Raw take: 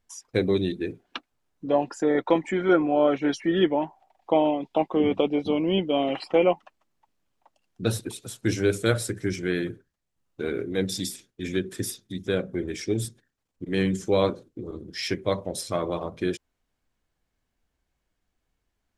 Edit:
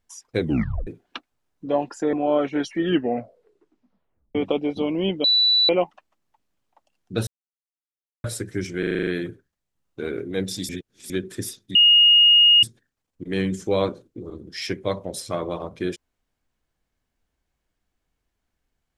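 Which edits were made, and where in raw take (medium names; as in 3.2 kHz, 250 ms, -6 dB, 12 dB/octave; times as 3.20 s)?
0.40 s: tape stop 0.47 s
2.13–2.82 s: delete
3.52 s: tape stop 1.52 s
5.93–6.38 s: bleep 3.96 kHz -14.5 dBFS
7.96–8.93 s: mute
9.48 s: stutter 0.04 s, 8 plays
11.10–11.51 s: reverse
12.16–13.04 s: bleep 2.86 kHz -10.5 dBFS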